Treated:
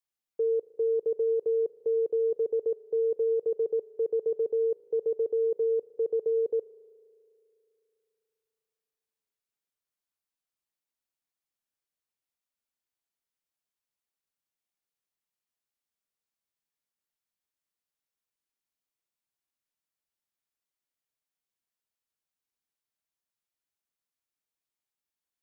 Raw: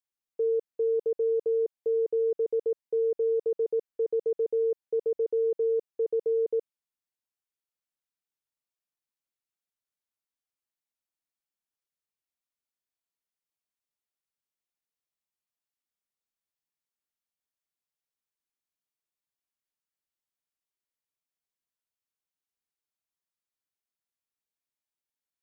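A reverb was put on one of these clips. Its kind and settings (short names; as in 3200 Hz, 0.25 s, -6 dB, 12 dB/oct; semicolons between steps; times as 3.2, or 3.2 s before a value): spring tank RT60 2.8 s, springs 36 ms, chirp 65 ms, DRR 16.5 dB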